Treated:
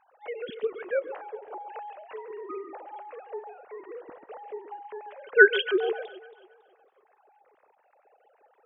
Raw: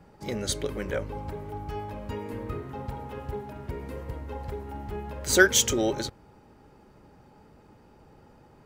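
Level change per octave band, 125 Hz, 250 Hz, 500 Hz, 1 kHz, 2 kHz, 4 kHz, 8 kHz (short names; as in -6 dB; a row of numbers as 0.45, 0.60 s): under -30 dB, -7.0 dB, +2.5 dB, -1.0 dB, +3.5 dB, -6.0 dB, under -40 dB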